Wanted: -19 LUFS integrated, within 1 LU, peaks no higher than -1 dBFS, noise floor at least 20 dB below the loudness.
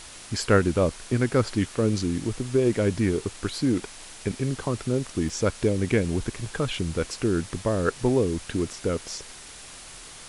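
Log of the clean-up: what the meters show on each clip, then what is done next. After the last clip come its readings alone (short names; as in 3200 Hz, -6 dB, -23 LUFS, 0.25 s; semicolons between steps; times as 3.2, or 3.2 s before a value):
dropouts 1; longest dropout 3.5 ms; noise floor -44 dBFS; noise floor target -46 dBFS; loudness -26.0 LUFS; peak -6.5 dBFS; loudness target -19.0 LUFS
-> interpolate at 5.29, 3.5 ms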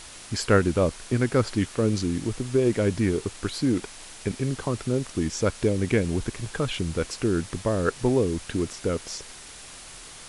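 dropouts 0; noise floor -44 dBFS; noise floor target -46 dBFS
-> denoiser 6 dB, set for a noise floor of -44 dBFS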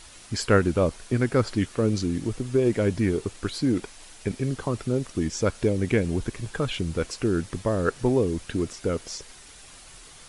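noise floor -48 dBFS; loudness -26.0 LUFS; peak -6.5 dBFS; loudness target -19.0 LUFS
-> gain +7 dB; limiter -1 dBFS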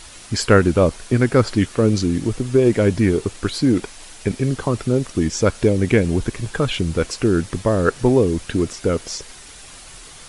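loudness -19.0 LUFS; peak -1.0 dBFS; noise floor -41 dBFS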